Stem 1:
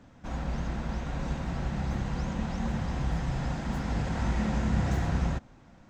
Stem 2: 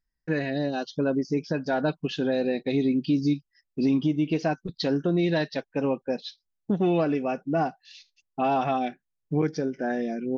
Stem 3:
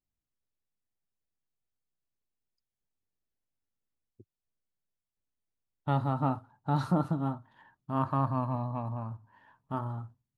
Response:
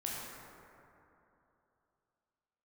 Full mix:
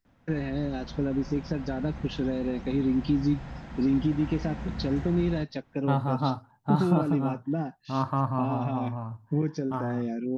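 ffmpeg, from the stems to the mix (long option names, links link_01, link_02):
-filter_complex "[0:a]aemphasis=mode=production:type=75kf,acrusher=bits=5:mode=log:mix=0:aa=0.000001,lowpass=2800,adelay=50,volume=-8.5dB[link_01];[1:a]acrossover=split=310[link_02][link_03];[link_03]acompressor=threshold=-37dB:ratio=6[link_04];[link_02][link_04]amix=inputs=2:normalize=0,volume=1dB[link_05];[2:a]volume=2dB[link_06];[link_01][link_05][link_06]amix=inputs=3:normalize=0"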